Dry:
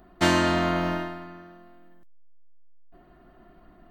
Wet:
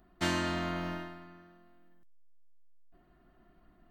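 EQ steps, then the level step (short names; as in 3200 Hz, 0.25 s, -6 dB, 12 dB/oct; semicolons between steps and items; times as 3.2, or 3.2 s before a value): bell 590 Hz -4.5 dB 2.1 oct; -8.0 dB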